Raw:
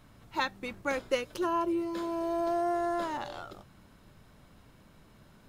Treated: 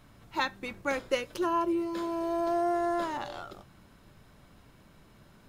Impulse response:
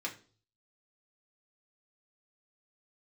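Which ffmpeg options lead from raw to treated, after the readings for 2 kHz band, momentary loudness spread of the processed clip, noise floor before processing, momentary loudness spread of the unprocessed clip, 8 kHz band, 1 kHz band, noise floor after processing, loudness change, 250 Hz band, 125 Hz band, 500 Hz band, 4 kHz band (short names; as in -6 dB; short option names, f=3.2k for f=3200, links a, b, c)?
+1.0 dB, 10 LU, -59 dBFS, 9 LU, +1.0 dB, +1.0 dB, -58 dBFS, +1.0 dB, +1.5 dB, +0.5 dB, +1.0 dB, +1.0 dB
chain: -filter_complex "[0:a]asplit=2[a][b];[1:a]atrim=start_sample=2205[c];[b][c]afir=irnorm=-1:irlink=0,volume=-15.5dB[d];[a][d]amix=inputs=2:normalize=0"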